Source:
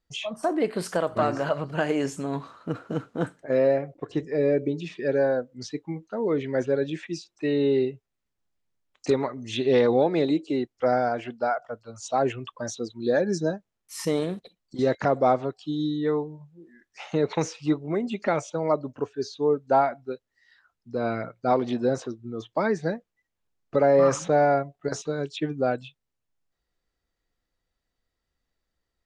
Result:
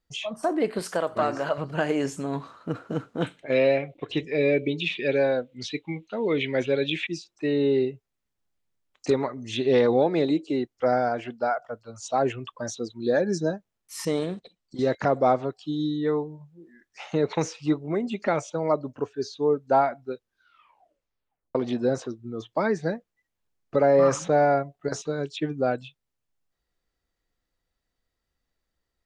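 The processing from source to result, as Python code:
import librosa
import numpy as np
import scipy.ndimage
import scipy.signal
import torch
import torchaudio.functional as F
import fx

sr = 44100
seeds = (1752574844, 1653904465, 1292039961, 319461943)

y = fx.low_shelf(x, sr, hz=180.0, db=-9.5, at=(0.79, 1.58))
y = fx.band_shelf(y, sr, hz=2900.0, db=15.0, octaves=1.1, at=(3.22, 7.07))
y = fx.ellip_lowpass(y, sr, hz=8700.0, order=4, stop_db=40, at=(14.05, 14.93))
y = fx.edit(y, sr, fx.tape_stop(start_s=20.13, length_s=1.42), tone=tone)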